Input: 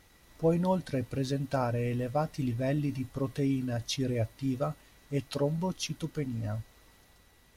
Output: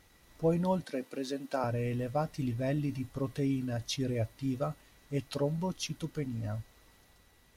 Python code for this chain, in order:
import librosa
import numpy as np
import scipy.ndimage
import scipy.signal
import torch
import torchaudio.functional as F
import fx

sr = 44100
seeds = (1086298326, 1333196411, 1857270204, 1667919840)

y = fx.highpass(x, sr, hz=240.0, slope=24, at=(0.84, 1.64))
y = F.gain(torch.from_numpy(y), -2.0).numpy()